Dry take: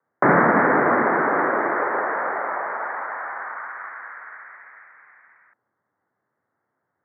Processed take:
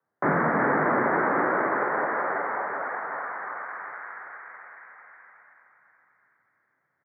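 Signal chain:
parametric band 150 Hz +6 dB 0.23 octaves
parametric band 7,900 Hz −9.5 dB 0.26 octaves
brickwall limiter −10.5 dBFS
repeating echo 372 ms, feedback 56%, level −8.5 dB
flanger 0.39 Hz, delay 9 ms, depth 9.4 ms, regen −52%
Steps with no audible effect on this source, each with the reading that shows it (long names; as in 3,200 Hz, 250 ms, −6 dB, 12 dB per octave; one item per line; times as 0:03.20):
parametric band 7,900 Hz: nothing at its input above 2,400 Hz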